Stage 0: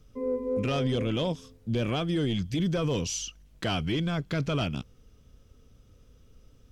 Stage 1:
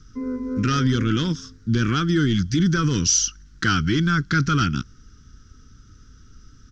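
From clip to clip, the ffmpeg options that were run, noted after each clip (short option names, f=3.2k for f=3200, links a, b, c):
-af "firequalizer=gain_entry='entry(330,0);entry(600,-26);entry(1400,11);entry(2400,-7);entry(5700,9);entry(9600,-20)':delay=0.05:min_phase=1,volume=8.5dB"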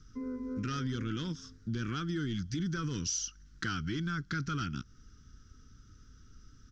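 -af "acompressor=threshold=-29dB:ratio=2,volume=-8dB"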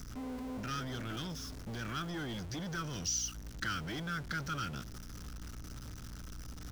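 -filter_complex "[0:a]aeval=exprs='val(0)+0.5*0.00841*sgn(val(0))':c=same,aeval=exprs='val(0)+0.00631*(sin(2*PI*60*n/s)+sin(2*PI*2*60*n/s)/2+sin(2*PI*3*60*n/s)/3+sin(2*PI*4*60*n/s)/4+sin(2*PI*5*60*n/s)/5)':c=same,acrossover=split=550|1700[a][b][c];[a]asoftclip=type=tanh:threshold=-37.5dB[d];[d][b][c]amix=inputs=3:normalize=0,volume=-1.5dB"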